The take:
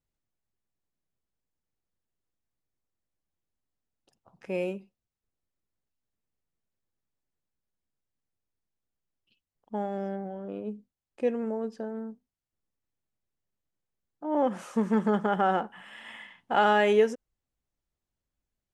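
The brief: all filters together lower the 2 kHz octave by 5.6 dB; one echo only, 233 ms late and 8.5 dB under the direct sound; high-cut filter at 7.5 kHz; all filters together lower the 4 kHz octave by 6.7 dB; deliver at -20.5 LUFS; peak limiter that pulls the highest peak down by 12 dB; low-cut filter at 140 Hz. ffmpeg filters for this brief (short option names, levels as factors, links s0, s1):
-af "highpass=140,lowpass=7500,equalizer=f=2000:t=o:g=-7,equalizer=f=4000:t=o:g=-6,alimiter=limit=0.0631:level=0:latency=1,aecho=1:1:233:0.376,volume=5.31"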